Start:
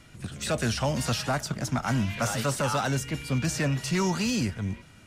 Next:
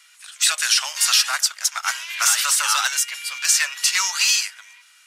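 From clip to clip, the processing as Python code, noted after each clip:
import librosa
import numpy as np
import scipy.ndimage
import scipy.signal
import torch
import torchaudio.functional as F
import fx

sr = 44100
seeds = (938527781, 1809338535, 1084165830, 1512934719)

y = scipy.signal.sosfilt(scipy.signal.butter(4, 1100.0, 'highpass', fs=sr, output='sos'), x)
y = fx.high_shelf(y, sr, hz=2000.0, db=11.0)
y = fx.upward_expand(y, sr, threshold_db=-42.0, expansion=1.5)
y = F.gain(torch.from_numpy(y), 8.0).numpy()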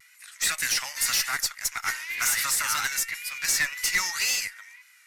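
y = fx.graphic_eq_31(x, sr, hz=(2000, 3150, 12500), db=(12, -7, 10))
y = fx.tube_stage(y, sr, drive_db=11.0, bias=0.3)
y = fx.vibrato(y, sr, rate_hz=1.9, depth_cents=68.0)
y = F.gain(torch.from_numpy(y), -6.0).numpy()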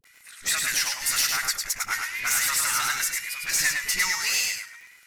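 y = fx.dispersion(x, sr, late='highs', ms=50.0, hz=560.0)
y = fx.dmg_crackle(y, sr, seeds[0], per_s=47.0, level_db=-40.0)
y = fx.echo_feedback(y, sr, ms=103, feedback_pct=17, wet_db=-4)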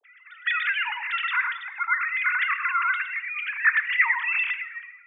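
y = fx.sine_speech(x, sr)
y = fx.rider(y, sr, range_db=3, speed_s=2.0)
y = fx.room_shoebox(y, sr, seeds[1], volume_m3=440.0, walls='mixed', distance_m=0.32)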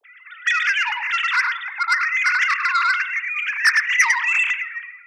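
y = fx.transformer_sat(x, sr, knee_hz=3600.0)
y = F.gain(torch.from_numpy(y), 6.5).numpy()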